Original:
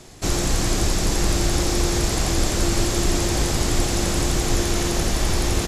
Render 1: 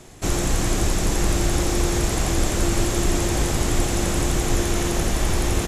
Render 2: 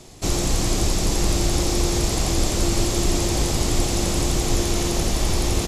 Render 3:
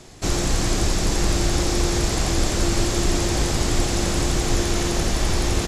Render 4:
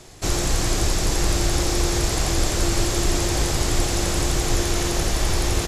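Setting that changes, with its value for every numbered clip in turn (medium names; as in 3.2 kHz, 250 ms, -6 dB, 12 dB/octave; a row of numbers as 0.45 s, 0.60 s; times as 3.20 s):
peaking EQ, frequency: 4.7 kHz, 1.6 kHz, 13 kHz, 220 Hz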